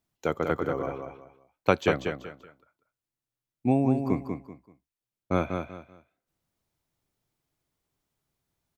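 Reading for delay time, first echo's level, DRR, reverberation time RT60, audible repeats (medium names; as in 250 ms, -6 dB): 192 ms, -6.0 dB, no reverb, no reverb, 3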